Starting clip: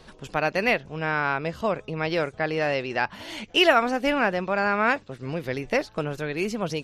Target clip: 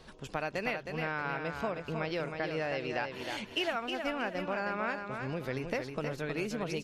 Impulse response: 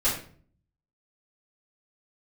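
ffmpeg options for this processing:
-filter_complex "[0:a]asettb=1/sr,asplit=3[link_01][link_02][link_03];[link_01]atrim=end=3.544[link_04];[link_02]atrim=start=3.54:end=4.35,asetpts=PTS-STARTPTS,afade=type=in:duration=0.004:curve=qsin,afade=type=out:start_time=0.806:duration=0.004:curve=qsin,agate=range=-33dB:threshold=-19dB:ratio=3:detection=peak[link_05];[link_03]atrim=start=4.346[link_06];[link_04][link_05]acrossfade=duration=0.004:curve1=hsin:curve2=qsin[link_07];[link_07][link_06]acrossfade=duration=0.004:curve1=qsin:curve2=hsin,acompressor=threshold=-27dB:ratio=4,aecho=1:1:315|630|945|1260:0.501|0.165|0.0546|0.018,volume=-4.5dB"

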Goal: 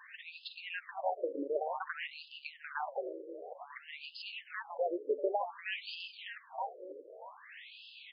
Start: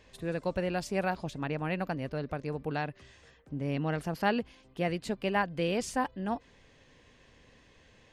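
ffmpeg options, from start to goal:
ffmpeg -i in.wav -filter_complex "[0:a]equalizer=frequency=200:width_type=o:width=0.5:gain=-13,acompressor=threshold=-41dB:ratio=12,asplit=2[link_01][link_02];[link_02]asplit=6[link_03][link_04][link_05][link_06][link_07][link_08];[link_03]adelay=316,afreqshift=89,volume=-5dB[link_09];[link_04]adelay=632,afreqshift=178,volume=-11.4dB[link_10];[link_05]adelay=948,afreqshift=267,volume=-17.8dB[link_11];[link_06]adelay=1264,afreqshift=356,volume=-24.1dB[link_12];[link_07]adelay=1580,afreqshift=445,volume=-30.5dB[link_13];[link_08]adelay=1896,afreqshift=534,volume=-36.9dB[link_14];[link_09][link_10][link_11][link_12][link_13][link_14]amix=inputs=6:normalize=0[link_15];[link_01][link_15]amix=inputs=2:normalize=0,afftfilt=real='re*between(b*sr/1024,400*pow(3700/400,0.5+0.5*sin(2*PI*0.54*pts/sr))/1.41,400*pow(3700/400,0.5+0.5*sin(2*PI*0.54*pts/sr))*1.41)':imag='im*between(b*sr/1024,400*pow(3700/400,0.5+0.5*sin(2*PI*0.54*pts/sr))/1.41,400*pow(3700/400,0.5+0.5*sin(2*PI*0.54*pts/sr))*1.41)':win_size=1024:overlap=0.75,volume=13.5dB" out.wav

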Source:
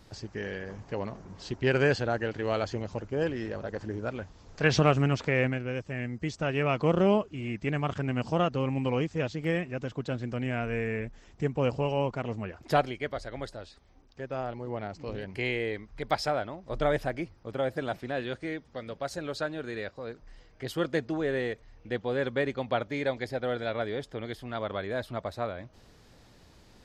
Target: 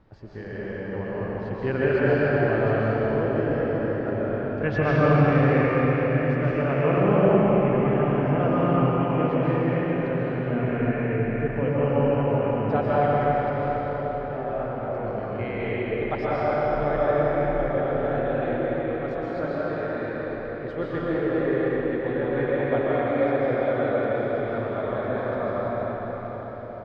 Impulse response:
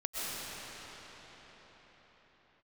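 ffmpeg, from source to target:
-filter_complex "[0:a]lowpass=1700,asplit=2[link_01][link_02];[link_02]adelay=90,highpass=300,lowpass=3400,asoftclip=type=hard:threshold=-21.5dB,volume=-23dB[link_03];[link_01][link_03]amix=inputs=2:normalize=0[link_04];[1:a]atrim=start_sample=2205,asetrate=40572,aresample=44100[link_05];[link_04][link_05]afir=irnorm=-1:irlink=0"

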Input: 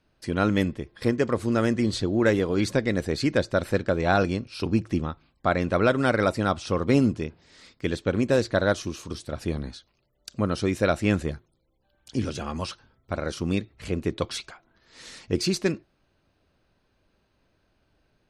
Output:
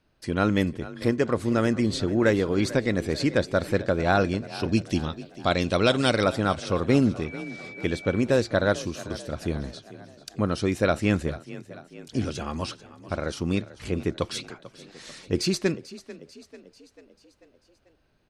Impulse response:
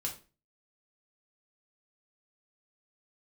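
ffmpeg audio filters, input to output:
-filter_complex "[0:a]asettb=1/sr,asplit=3[link_01][link_02][link_03];[link_01]atrim=end=4.724[link_04];[link_02]atrim=start=4.72:end=6.24,asetpts=PTS-STARTPTS,afade=type=in:duration=0.004:curve=qsin,afade=type=out:start_time=1.516:duration=0.004:curve=qsin,highshelf=frequency=2400:width_type=q:width=1.5:gain=9[link_05];[link_03]atrim=start=6.236[link_06];[link_04][link_05]acrossfade=duration=0.004:curve1=hsin:curve2=qsin[link_07];[link_07][link_06]acrossfade=duration=0.004:curve1=qsin:curve2=hsin,asettb=1/sr,asplit=3[link_08][link_09][link_10];[link_08]atrim=end=7.264[link_11];[link_09]atrim=start=7.26:end=8.23,asetpts=PTS-STARTPTS,afade=type=in:duration=0.004:curve=qsin,afade=type=out:start_time=0.966:duration=0.004:curve=qsin,aeval=exprs='val(0)+0.01*sin(2*PI*2300*n/s)':channel_layout=same[link_12];[link_10]atrim=start=8.226[link_13];[link_11][link_12]acrossfade=duration=0.004:curve1=hsin:curve2=qsin[link_14];[link_14][link_13]acrossfade=duration=0.004:curve1=qsin:curve2=hsin,asplit=6[link_15][link_16][link_17][link_18][link_19][link_20];[link_16]adelay=442,afreqshift=31,volume=-17dB[link_21];[link_17]adelay=884,afreqshift=62,volume=-22.4dB[link_22];[link_18]adelay=1326,afreqshift=93,volume=-27.7dB[link_23];[link_19]adelay=1768,afreqshift=124,volume=-33.1dB[link_24];[link_20]adelay=2210,afreqshift=155,volume=-38.4dB[link_25];[link_15][link_21][link_22][link_23][link_24][link_25]amix=inputs=6:normalize=0"

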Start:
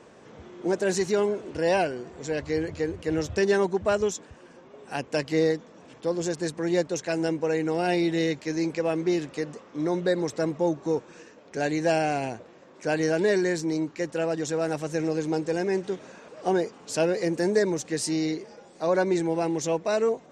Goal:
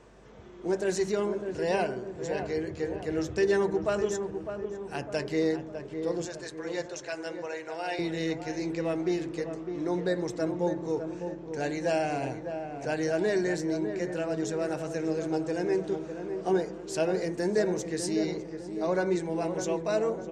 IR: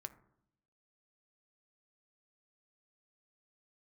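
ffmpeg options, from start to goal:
-filter_complex "[0:a]aeval=exprs='val(0)+0.00158*(sin(2*PI*50*n/s)+sin(2*PI*2*50*n/s)/2+sin(2*PI*3*50*n/s)/3+sin(2*PI*4*50*n/s)/4+sin(2*PI*5*50*n/s)/5)':channel_layout=same,asettb=1/sr,asplit=3[link_01][link_02][link_03];[link_01]atrim=end=6.254[link_04];[link_02]atrim=start=6.25:end=7.99,asetpts=PTS-STARTPTS,afade=type=in:duration=0.004:curve=qsin,afade=type=out:start_time=1.736:duration=0.004:curve=qsin,highpass=660,lowpass=7700[link_05];[link_03]atrim=start=7.986[link_06];[link_04][link_05]acrossfade=duration=0.004:curve1=hsin:curve2=qsin[link_07];[link_07][link_06]acrossfade=duration=0.004:curve1=qsin:curve2=hsin,asplit=2[link_08][link_09];[link_09]adelay=604,lowpass=frequency=1200:poles=1,volume=-7dB,asplit=2[link_10][link_11];[link_11]adelay=604,lowpass=frequency=1200:poles=1,volume=0.54,asplit=2[link_12][link_13];[link_13]adelay=604,lowpass=frequency=1200:poles=1,volume=0.54,asplit=2[link_14][link_15];[link_15]adelay=604,lowpass=frequency=1200:poles=1,volume=0.54,asplit=2[link_16][link_17];[link_17]adelay=604,lowpass=frequency=1200:poles=1,volume=0.54,asplit=2[link_18][link_19];[link_19]adelay=604,lowpass=frequency=1200:poles=1,volume=0.54,asplit=2[link_20][link_21];[link_21]adelay=604,lowpass=frequency=1200:poles=1,volume=0.54[link_22];[link_08][link_10][link_12][link_14][link_16][link_18][link_20][link_22]amix=inputs=8:normalize=0[link_23];[1:a]atrim=start_sample=2205[link_24];[link_23][link_24]afir=irnorm=-1:irlink=0"

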